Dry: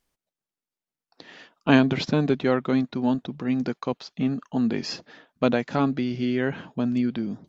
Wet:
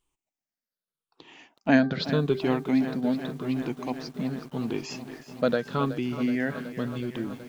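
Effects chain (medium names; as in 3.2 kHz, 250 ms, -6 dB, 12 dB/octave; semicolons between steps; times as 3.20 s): drifting ripple filter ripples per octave 0.66, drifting -0.85 Hz, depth 12 dB; de-hum 393.3 Hz, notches 4; bit-crushed delay 373 ms, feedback 80%, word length 7-bit, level -13 dB; trim -5 dB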